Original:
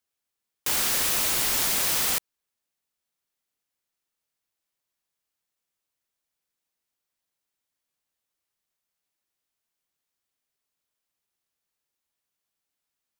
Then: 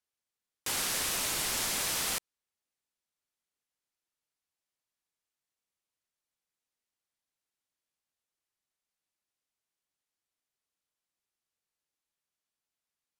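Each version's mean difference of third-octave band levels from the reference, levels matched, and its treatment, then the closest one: 2.0 dB: low-pass 12 kHz 12 dB/octave; trim -5 dB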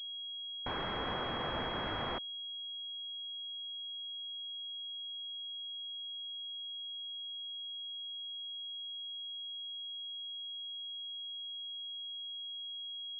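17.5 dB: class-D stage that switches slowly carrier 3.3 kHz; trim -7.5 dB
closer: first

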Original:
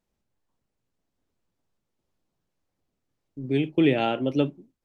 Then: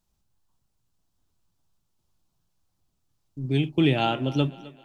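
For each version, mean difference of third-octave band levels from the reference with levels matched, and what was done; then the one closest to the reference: 4.0 dB: ten-band graphic EQ 250 Hz -7 dB, 500 Hz -12 dB, 2 kHz -10 dB; thinning echo 262 ms, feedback 49%, high-pass 230 Hz, level -18.5 dB; trim +8 dB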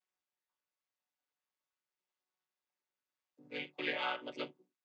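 7.5 dB: vocoder on a held chord minor triad, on B2; high-pass 1.5 kHz 12 dB/octave; trim +5.5 dB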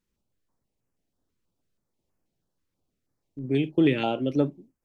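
1.0 dB: step-sequenced notch 6.2 Hz 710–3700 Hz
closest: third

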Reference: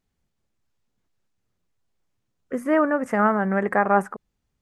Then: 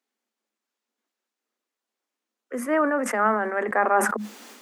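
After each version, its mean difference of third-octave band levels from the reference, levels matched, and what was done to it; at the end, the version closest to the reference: 4.5 dB: Chebyshev high-pass 210 Hz, order 10; bass shelf 270 Hz -10 dB; decay stretcher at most 51 dB/s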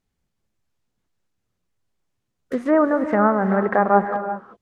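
3.5 dB: in parallel at -7 dB: bit crusher 6-bit; on the sum: low-pass that closes with the level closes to 1.3 kHz, closed at -15 dBFS; gated-style reverb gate 410 ms rising, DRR 9 dB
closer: second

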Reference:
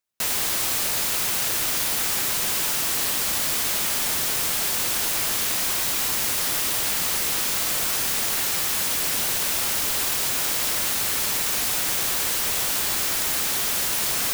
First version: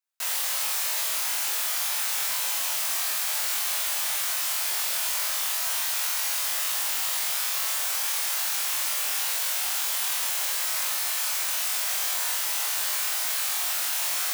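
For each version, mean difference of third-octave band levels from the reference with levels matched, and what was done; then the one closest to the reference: 8.5 dB: high-pass 630 Hz 24 dB/octave; on a send: flutter echo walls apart 3.9 m, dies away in 0.51 s; on the sum: trim -6.5 dB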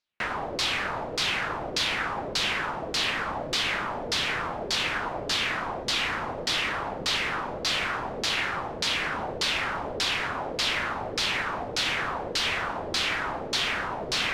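12.5 dB: LFO low-pass saw down 1.7 Hz 430–4800 Hz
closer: first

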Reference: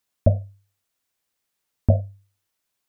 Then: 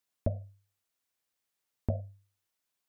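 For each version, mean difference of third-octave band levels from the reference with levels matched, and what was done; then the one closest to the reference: 1.5 dB: bass shelf 180 Hz -3.5 dB; compression, threshold -20 dBFS, peak gain reduction 8 dB; trim -6 dB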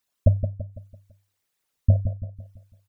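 4.5 dB: resonances exaggerated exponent 2; feedback delay 167 ms, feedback 43%, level -8.5 dB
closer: first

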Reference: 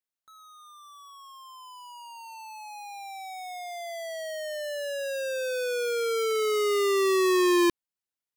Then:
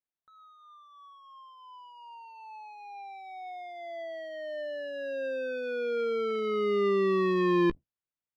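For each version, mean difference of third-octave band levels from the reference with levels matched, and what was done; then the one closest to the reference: 7.5 dB: octave divider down 1 oct, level -4 dB; distance through air 370 m; doubling 15 ms -14 dB; trim -2 dB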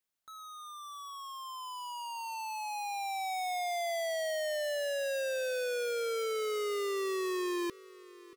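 5.0 dB: peak limiter -31 dBFS, peak gain reduction 11 dB; gain riding within 4 dB; on a send: feedback delay 633 ms, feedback 55%, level -21 dB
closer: second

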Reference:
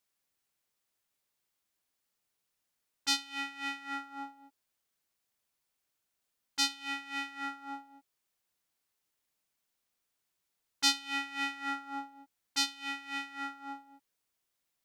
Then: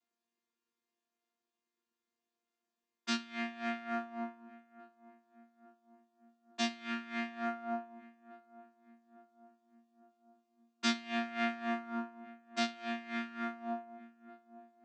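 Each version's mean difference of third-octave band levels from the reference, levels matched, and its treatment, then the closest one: 11.0 dB: vocoder on a held chord bare fifth, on A#3; on a send: filtered feedback delay 856 ms, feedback 66%, low-pass 1 kHz, level -17.5 dB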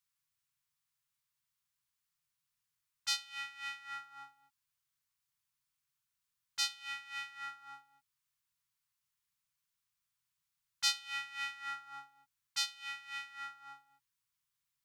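5.5 dB: Chebyshev band-stop 170–1000 Hz, order 3; peaking EQ 120 Hz +7.5 dB 0.6 oct; trim -3.5 dB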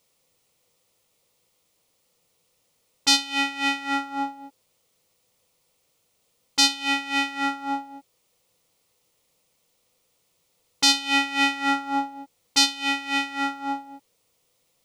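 3.0 dB: graphic EQ with 31 bands 100 Hz +7 dB, 160 Hz +7 dB, 500 Hz +12 dB, 1.6 kHz -12 dB, 16 kHz -11 dB; loudness maximiser +16 dB; trim -1 dB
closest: third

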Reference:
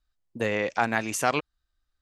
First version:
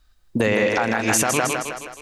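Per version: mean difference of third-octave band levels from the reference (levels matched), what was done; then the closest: 6.0 dB: compression, threshold -31 dBFS, peak gain reduction 13 dB; on a send: two-band feedback delay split 320 Hz, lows 109 ms, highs 158 ms, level -5 dB; on the sum: loudness maximiser +24.5 dB; trim -7 dB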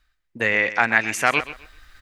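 4.0 dB: peaking EQ 2 kHz +13 dB 1.2 oct; reverse; upward compressor, threshold -25 dBFS; reverse; feedback delay 128 ms, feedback 24%, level -14.5 dB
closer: second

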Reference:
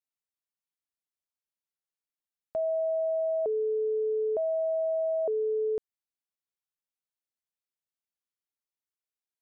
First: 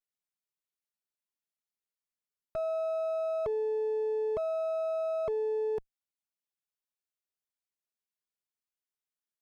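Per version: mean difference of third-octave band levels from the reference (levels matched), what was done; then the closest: 4.5 dB: comb filter that takes the minimum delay 4.8 ms; peaking EQ 820 Hz -2 dB; trim -2 dB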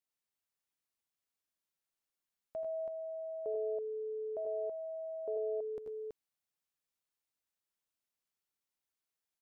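1.5 dB: peak limiter -35 dBFS, peak gain reduction 10 dB; on a send: multi-tap echo 83/96/111/328 ms -8.5/-6.5/-19.5/-4 dB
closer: second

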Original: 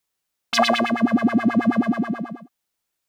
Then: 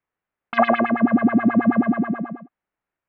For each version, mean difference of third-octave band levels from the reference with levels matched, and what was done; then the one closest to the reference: 3.5 dB: low-pass 2.1 kHz 24 dB/octave; trim +1.5 dB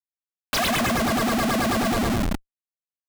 13.0 dB: Schmitt trigger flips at -29 dBFS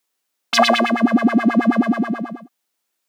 2.0 dB: high-pass 190 Hz 24 dB/octave; trim +4 dB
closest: third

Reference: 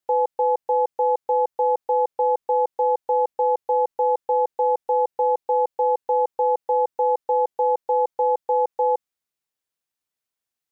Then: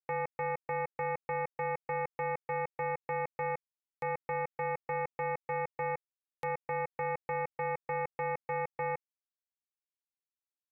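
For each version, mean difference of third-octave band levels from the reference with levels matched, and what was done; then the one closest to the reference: 10.5 dB: peak limiter -23.5 dBFS, peak gain reduction 10.5 dB; power-law waveshaper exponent 3; buffer glitch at 3.65/6.06 s, samples 1024, times 15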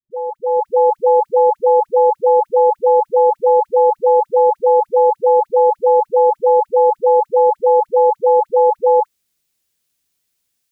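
4.0 dB: peaking EQ 930 Hz -10 dB 2.4 oct; level rider gain up to 13 dB; phase dispersion highs, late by 110 ms, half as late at 600 Hz; trim +3.5 dB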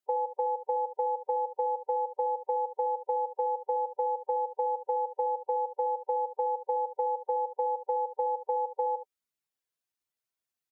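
2.0 dB: spectral gate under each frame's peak -10 dB strong; compression, threshold -23 dBFS, peak gain reduction 6.5 dB; on a send: delay 73 ms -11.5 dB; on the sum: trim -3.5 dB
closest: third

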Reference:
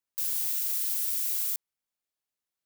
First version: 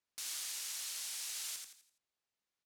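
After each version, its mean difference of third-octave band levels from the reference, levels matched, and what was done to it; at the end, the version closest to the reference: 8.5 dB: low-pass 6.5 kHz 12 dB/octave; gain riding 0.5 s; overload inside the chain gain 35 dB; on a send: frequency-shifting echo 84 ms, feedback 38%, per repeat +81 Hz, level -4.5 dB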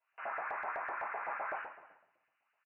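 25.0 dB: frequency inversion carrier 2.9 kHz; simulated room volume 270 m³, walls mixed, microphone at 5.2 m; LFO high-pass saw up 7.9 Hz 610–1700 Hz; delay 305 ms -21.5 dB; trim +1 dB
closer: first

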